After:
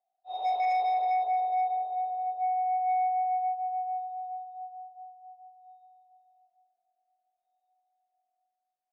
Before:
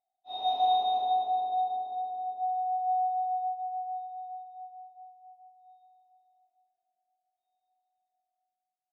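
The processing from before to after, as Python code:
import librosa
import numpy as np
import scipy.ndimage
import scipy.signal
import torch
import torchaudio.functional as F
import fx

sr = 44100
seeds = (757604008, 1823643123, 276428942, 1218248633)

y = fx.lowpass(x, sr, hz=1700.0, slope=6)
y = fx.fold_sine(y, sr, drive_db=5, ceiling_db=-19.0)
y = fx.ladder_highpass(y, sr, hz=440.0, resonance_pct=45)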